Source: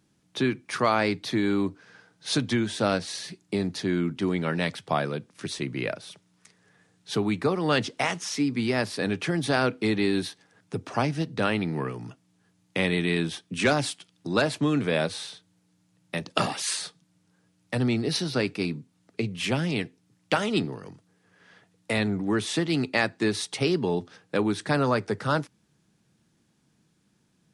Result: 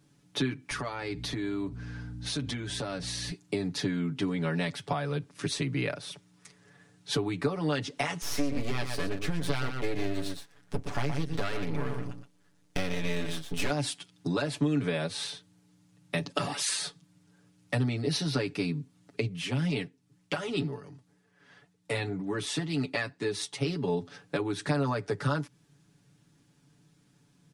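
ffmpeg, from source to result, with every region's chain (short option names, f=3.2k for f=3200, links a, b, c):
-filter_complex "[0:a]asettb=1/sr,asplit=3[a][b][c];[a]atrim=end=0.714[d];[b]atrim=start=0.71:end=3.31,asetpts=PTS-STARTPTS,afade=t=in:d=0.004:c=qsin,afade=t=out:st=2.596:d=0.004:c=qsin,aeval=exprs='val(0)+0.01*(sin(2*PI*60*n/s)+sin(2*PI*2*60*n/s)/2+sin(2*PI*3*60*n/s)/3+sin(2*PI*4*60*n/s)/4+sin(2*PI*5*60*n/s)/5)':c=same,acompressor=threshold=-33dB:ratio=6:attack=3.2:release=140:knee=1:detection=peak[e];[c]atrim=start=3.306[f];[d][e]acrossfade=d=0.004:c1=hsin:c2=qsin[g];[g][f]acrossfade=d=0.004:c1=qsin:c2=hsin,asettb=1/sr,asplit=3[h][i][j];[h]atrim=end=8.224[k];[i]atrim=start=8.22:end=13.7,asetpts=PTS-STARTPTS,afade=t=in:d=0.004:c=qsin,afade=t=out:st=5.476:d=0.004:c=qsin,aecho=1:1:120:0.376,atrim=end_sample=241668,aeval=exprs='max(val(0),0)':c=same[l];[j]atrim=start=13.696[m];[k][l]acrossfade=d=0.004:c1=hsin:c2=qsin[n];[n][m]acrossfade=d=0.004:c1=qsin:c2=hsin,asettb=1/sr,asplit=3[o][p][q];[o]atrim=end=19.284[r];[p]atrim=start=19.28:end=23.88,asetpts=PTS-STARTPTS,afade=t=in:d=0.004:c=qsin,afade=t=out:st=4.596:d=0.004:c=qsin,flanger=delay=4.5:depth=3.6:regen=58:speed=2:shape=sinusoidal,tremolo=f=2.2:d=0.44[s];[q]atrim=start=23.876[t];[r][s]acrossfade=d=0.004:c1=hsin:c2=qsin[u];[u][t]acrossfade=d=0.004:c1=qsin:c2=hsin,acompressor=threshold=-29dB:ratio=10,lowshelf=f=140:g=4,aecho=1:1:7:0.85"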